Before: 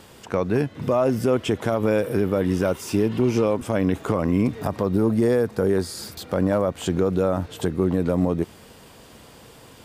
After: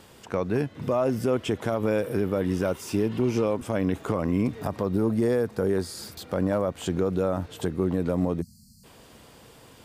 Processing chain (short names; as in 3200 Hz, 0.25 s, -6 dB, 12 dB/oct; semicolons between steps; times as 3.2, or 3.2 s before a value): spectral delete 8.41–8.84, 240–4100 Hz; gain -4 dB